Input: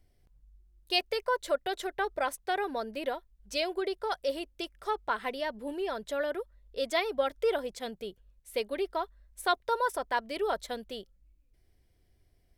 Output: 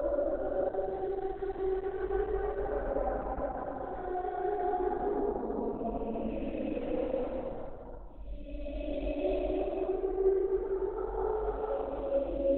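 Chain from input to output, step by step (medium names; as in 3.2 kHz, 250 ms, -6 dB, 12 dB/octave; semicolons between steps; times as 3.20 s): rotary cabinet horn 7.5 Hz; low-pass that closes with the level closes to 790 Hz, closed at -30.5 dBFS; Paulstretch 4.4×, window 0.50 s, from 1.48 s; RIAA curve playback; trim +1.5 dB; Opus 8 kbps 48 kHz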